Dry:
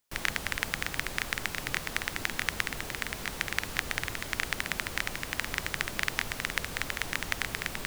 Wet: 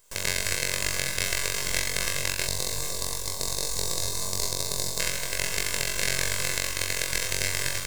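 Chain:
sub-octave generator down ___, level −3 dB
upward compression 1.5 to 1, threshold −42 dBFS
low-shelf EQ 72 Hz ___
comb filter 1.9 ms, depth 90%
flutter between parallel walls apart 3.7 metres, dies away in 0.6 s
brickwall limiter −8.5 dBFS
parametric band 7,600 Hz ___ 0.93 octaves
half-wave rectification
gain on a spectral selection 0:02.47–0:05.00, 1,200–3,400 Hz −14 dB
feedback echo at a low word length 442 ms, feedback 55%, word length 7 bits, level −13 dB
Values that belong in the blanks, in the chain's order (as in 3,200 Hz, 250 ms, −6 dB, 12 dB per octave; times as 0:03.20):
1 octave, −4 dB, +12 dB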